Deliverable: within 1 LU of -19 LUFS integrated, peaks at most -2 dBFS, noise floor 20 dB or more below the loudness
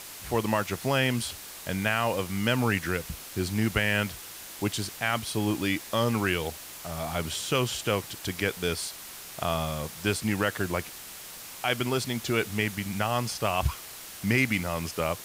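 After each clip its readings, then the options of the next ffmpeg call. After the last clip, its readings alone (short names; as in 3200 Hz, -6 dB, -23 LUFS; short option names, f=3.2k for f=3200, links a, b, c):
noise floor -43 dBFS; noise floor target -49 dBFS; loudness -28.5 LUFS; peak -9.5 dBFS; loudness target -19.0 LUFS
-> -af "afftdn=nr=6:nf=-43"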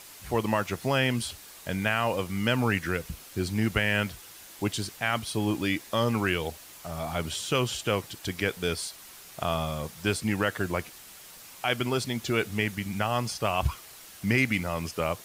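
noise floor -48 dBFS; noise floor target -49 dBFS
-> -af "afftdn=nr=6:nf=-48"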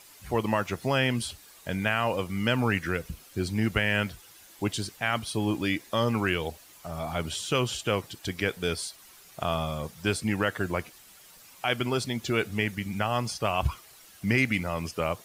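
noise floor -53 dBFS; loudness -29.0 LUFS; peak -9.5 dBFS; loudness target -19.0 LUFS
-> -af "volume=10dB,alimiter=limit=-2dB:level=0:latency=1"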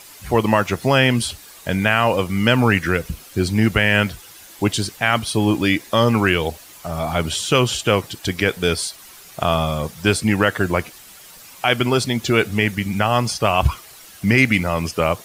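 loudness -19.0 LUFS; peak -2.0 dBFS; noise floor -43 dBFS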